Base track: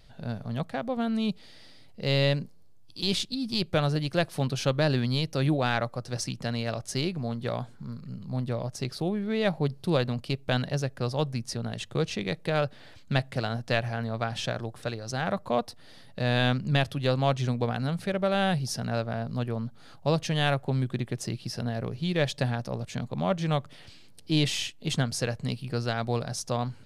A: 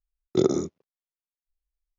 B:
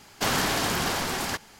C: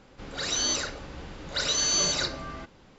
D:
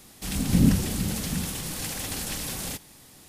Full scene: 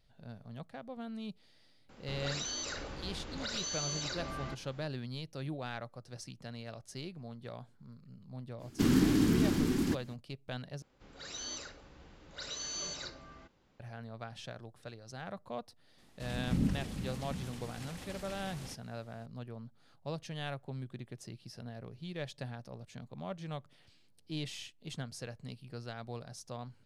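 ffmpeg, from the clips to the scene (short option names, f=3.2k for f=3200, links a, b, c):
-filter_complex "[3:a]asplit=2[a][b];[0:a]volume=-14.5dB[c];[a]acompressor=threshold=-33dB:ratio=6:attack=3.2:release=140:knee=1:detection=peak[d];[2:a]lowshelf=f=440:t=q:w=3:g=14[e];[4:a]aemphasis=mode=reproduction:type=50fm[f];[c]asplit=2[g][h];[g]atrim=end=10.824[i];[b]atrim=end=2.98,asetpts=PTS-STARTPTS,volume=-15dB[j];[h]atrim=start=13.796[k];[d]atrim=end=2.98,asetpts=PTS-STARTPTS,volume=-2.5dB,afade=t=in:d=0.004:c=hsin,afade=t=out:st=2.976:d=0.004:c=hsin,adelay=1890[l];[e]atrim=end=1.59,asetpts=PTS-STARTPTS,volume=-12.5dB,afade=t=in:d=0.05,afade=t=out:st=1.54:d=0.05,adelay=378378S[m];[f]atrim=end=3.28,asetpts=PTS-STARTPTS,volume=-12dB,afade=t=in:d=0.004:c=hsin,afade=t=out:st=3.276:d=0.004:c=hsin,adelay=15980[n];[i][j]acrossfade=d=0.004:c1=hsin:c2=hsin[o];[o][k]acrossfade=d=0.004:c1=hsin:c2=hsin[p];[p][l][m][n]amix=inputs=4:normalize=0"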